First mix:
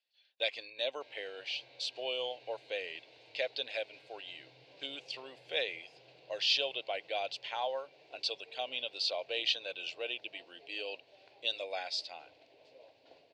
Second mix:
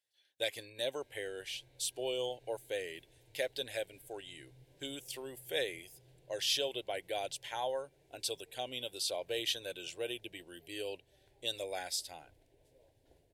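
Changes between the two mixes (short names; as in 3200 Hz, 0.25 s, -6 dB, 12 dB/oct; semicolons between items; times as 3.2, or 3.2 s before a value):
background -10.0 dB; master: remove speaker cabinet 350–4900 Hz, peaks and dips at 370 Hz -7 dB, 670 Hz +3 dB, 1200 Hz +7 dB, 1700 Hz -4 dB, 2600 Hz +8 dB, 4500 Hz +8 dB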